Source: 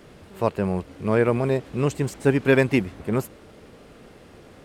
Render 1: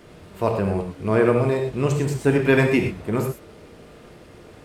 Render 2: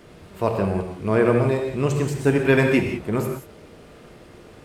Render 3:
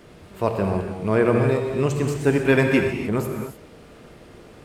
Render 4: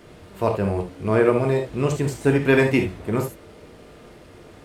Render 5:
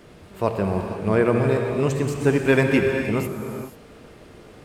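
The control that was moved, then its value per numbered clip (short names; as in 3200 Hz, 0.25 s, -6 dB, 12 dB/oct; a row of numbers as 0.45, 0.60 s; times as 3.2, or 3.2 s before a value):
non-linear reverb, gate: 0.14, 0.21, 0.32, 0.1, 0.51 s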